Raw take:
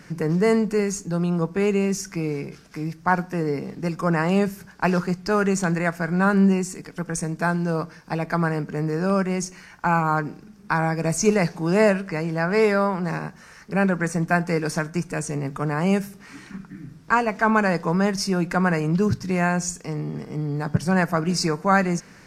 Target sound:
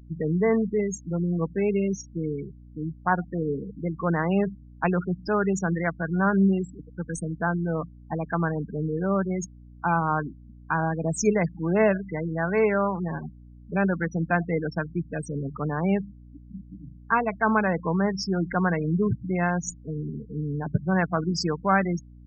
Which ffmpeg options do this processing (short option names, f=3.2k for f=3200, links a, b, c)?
-af "afftfilt=real='re*gte(hypot(re,im),0.0891)':imag='im*gte(hypot(re,im),0.0891)':win_size=1024:overlap=0.75,aeval=exprs='val(0)+0.00708*(sin(2*PI*60*n/s)+sin(2*PI*2*60*n/s)/2+sin(2*PI*3*60*n/s)/3+sin(2*PI*4*60*n/s)/4+sin(2*PI*5*60*n/s)/5)':c=same,volume=-3dB"